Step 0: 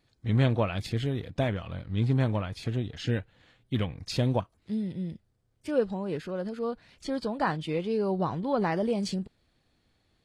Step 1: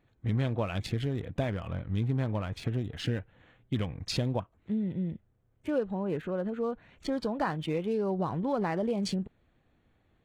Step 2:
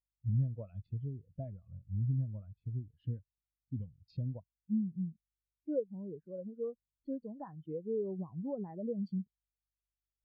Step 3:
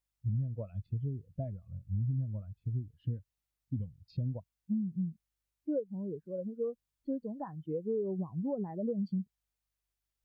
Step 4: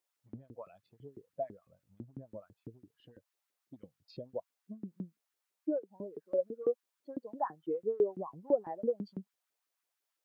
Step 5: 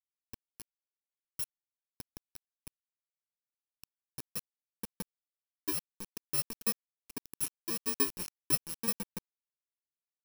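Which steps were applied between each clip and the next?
Wiener smoothing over 9 samples; compressor 3:1, threshold -30 dBFS, peak gain reduction 9.5 dB; gain +2.5 dB
hum 50 Hz, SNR 22 dB; spectral expander 2.5:1; gain -6.5 dB
compressor 10:1, threshold -34 dBFS, peak gain reduction 8 dB; gain +5 dB
LFO high-pass saw up 6 Hz 320–1600 Hz; gain +2.5 dB
FFT order left unsorted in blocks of 64 samples; requantised 6-bit, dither none; gain -1.5 dB

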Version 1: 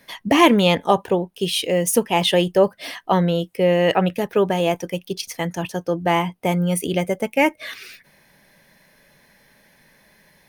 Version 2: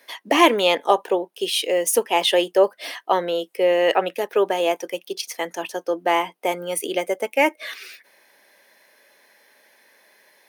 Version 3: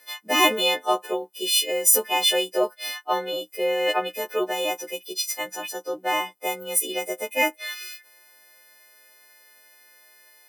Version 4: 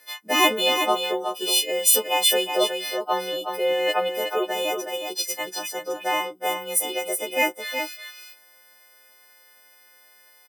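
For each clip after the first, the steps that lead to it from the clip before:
HPF 330 Hz 24 dB/oct
frequency quantiser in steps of 3 st; gain -6 dB
echo 0.369 s -6.5 dB

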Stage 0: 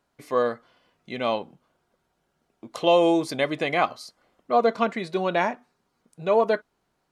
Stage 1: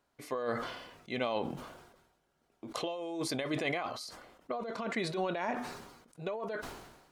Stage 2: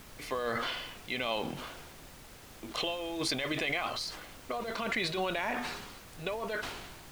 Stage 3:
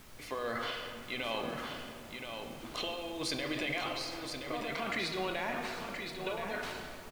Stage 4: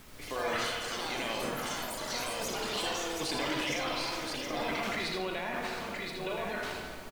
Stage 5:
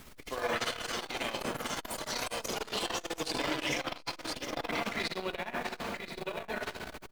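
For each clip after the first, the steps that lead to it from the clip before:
negative-ratio compressor -27 dBFS, ratio -1; bell 180 Hz -4.5 dB 0.52 oct; sustainer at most 54 dB/s; gain -8 dB
bell 2900 Hz +11 dB 1.9 oct; limiter -21 dBFS, peak gain reduction 9.5 dB; added noise pink -51 dBFS
echo 1.023 s -6.5 dB; on a send at -5 dB: reverb RT60 2.8 s, pre-delay 3 ms; on the sum: gain -4 dB
limiter -27 dBFS, peak gain reduction 4.5 dB; echo 80 ms -6.5 dB; echoes that change speed 0.14 s, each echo +6 st, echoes 3; gain +1.5 dB
core saturation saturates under 650 Hz; gain +2.5 dB

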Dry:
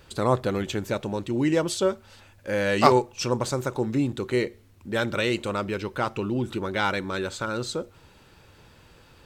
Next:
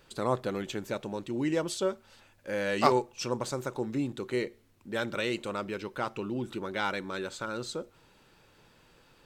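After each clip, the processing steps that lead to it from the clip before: bell 76 Hz -15 dB 0.72 oct; gain -6 dB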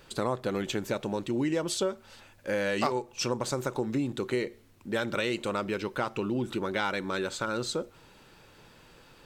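compressor 5:1, threshold -31 dBFS, peak gain reduction 13 dB; gain +5.5 dB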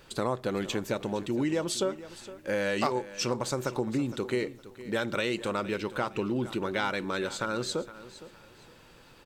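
feedback echo 0.463 s, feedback 27%, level -16 dB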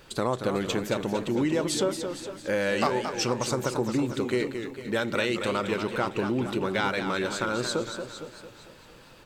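warbling echo 0.226 s, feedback 49%, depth 152 cents, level -8 dB; gain +2.5 dB

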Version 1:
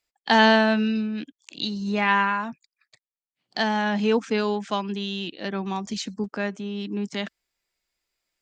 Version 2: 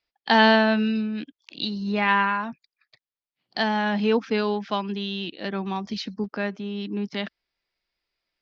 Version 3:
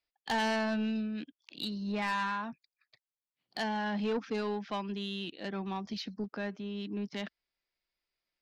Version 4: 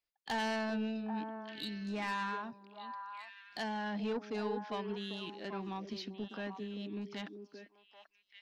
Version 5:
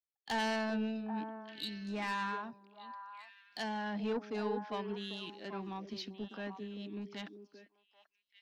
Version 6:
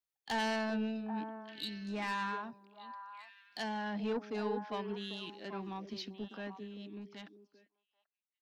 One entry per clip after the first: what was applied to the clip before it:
steep low-pass 5400 Hz 48 dB/oct
soft clip -19.5 dBFS, distortion -8 dB; gain -7 dB
delay with a stepping band-pass 0.393 s, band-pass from 360 Hz, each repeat 1.4 oct, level -3 dB; gain -4.5 dB
three-band expander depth 40%
ending faded out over 2.26 s

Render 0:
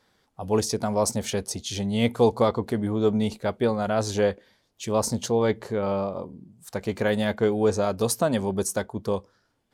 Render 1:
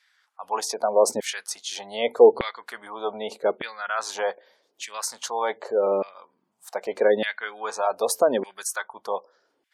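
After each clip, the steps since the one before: LFO high-pass saw down 0.83 Hz 340–2100 Hz; spectral gate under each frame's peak -30 dB strong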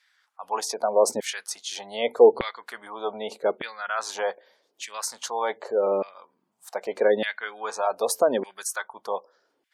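bell 84 Hz -3.5 dB 0.41 oct; gain -1 dB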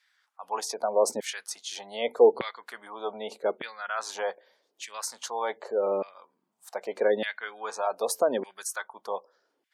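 HPF 130 Hz; gain -3.5 dB

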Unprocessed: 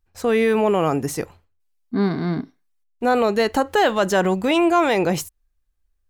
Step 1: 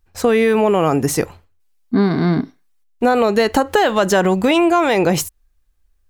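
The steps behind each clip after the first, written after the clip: compressor, threshold -19 dBFS, peak gain reduction 7 dB; gain +8.5 dB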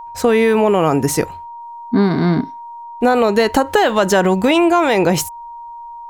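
whine 940 Hz -31 dBFS; gain +1 dB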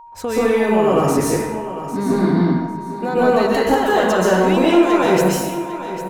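in parallel at -8 dB: soft clip -18 dBFS, distortion -7 dB; on the sum: feedback echo 0.8 s, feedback 23%, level -13 dB; plate-style reverb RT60 1.2 s, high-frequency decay 0.6×, pre-delay 0.115 s, DRR -7.5 dB; gain -11.5 dB

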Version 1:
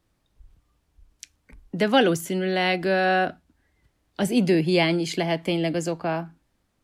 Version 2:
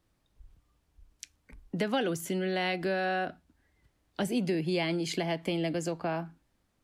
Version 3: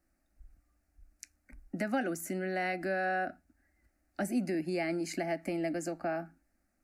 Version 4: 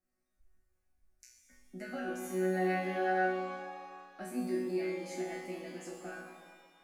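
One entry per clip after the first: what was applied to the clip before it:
compressor 3:1, threshold -25 dBFS, peak gain reduction 9.5 dB; gain -3 dB
fixed phaser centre 670 Hz, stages 8
resonator bank B2 fifth, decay 0.59 s; shimmer reverb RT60 1.8 s, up +7 st, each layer -8 dB, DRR 4.5 dB; gain +9 dB

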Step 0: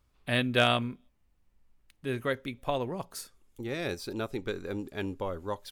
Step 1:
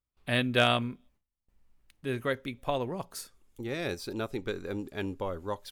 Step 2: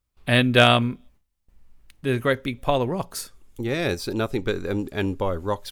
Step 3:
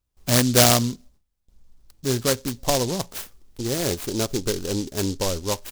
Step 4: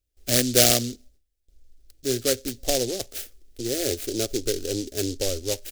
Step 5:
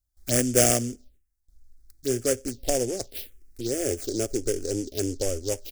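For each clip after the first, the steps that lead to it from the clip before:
gate with hold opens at -58 dBFS
low shelf 110 Hz +5 dB; gain +8.5 dB
noise-modulated delay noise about 5100 Hz, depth 0.15 ms
fixed phaser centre 410 Hz, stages 4
envelope phaser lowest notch 430 Hz, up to 4000 Hz, full sweep at -23.5 dBFS

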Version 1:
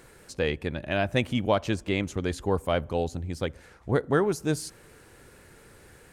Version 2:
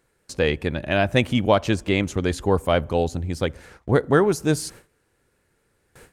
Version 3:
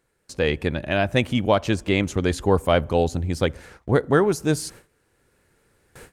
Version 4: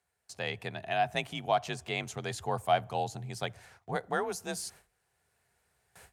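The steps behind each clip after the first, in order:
gate with hold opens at -40 dBFS; gain +6 dB
AGC gain up to 8 dB; gain -3.5 dB
passive tone stack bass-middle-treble 10-0-10; frequency shift +38 Hz; small resonant body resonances 380/700 Hz, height 18 dB, ringing for 25 ms; gain -6.5 dB

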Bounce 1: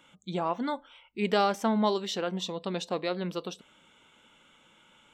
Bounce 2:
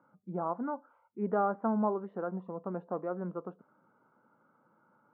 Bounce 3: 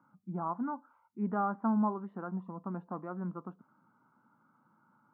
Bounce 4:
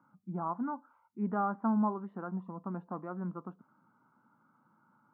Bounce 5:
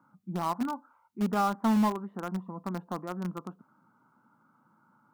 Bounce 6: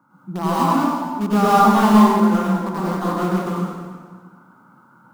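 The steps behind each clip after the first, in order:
Chebyshev band-pass 110–1400 Hz, order 4; gain -3.5 dB
graphic EQ 125/250/500/1000 Hz +5/+6/-11/+6 dB; gain -3 dB
nothing audible
in parallel at -9 dB: bit-crush 5-bit; on the sum: soft clip -20 dBFS, distortion -22 dB; gain +3 dB
plate-style reverb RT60 1.7 s, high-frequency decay 0.8×, pre-delay 85 ms, DRR -9.5 dB; gain +5 dB

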